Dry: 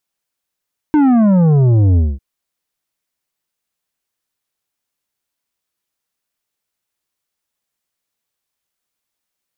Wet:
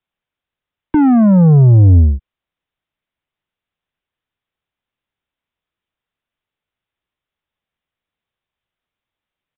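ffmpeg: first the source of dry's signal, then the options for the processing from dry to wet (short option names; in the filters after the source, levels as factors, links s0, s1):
-f lavfi -i "aevalsrc='0.355*clip((1.25-t)/0.22,0,1)*tanh(2.82*sin(2*PI*310*1.25/log(65/310)*(exp(log(65/310)*t/1.25)-1)))/tanh(2.82)':d=1.25:s=44100"
-filter_complex "[0:a]acrossover=split=150|260|850[s0][s1][s2][s3];[s0]acontrast=66[s4];[s4][s1][s2][s3]amix=inputs=4:normalize=0,aresample=8000,aresample=44100"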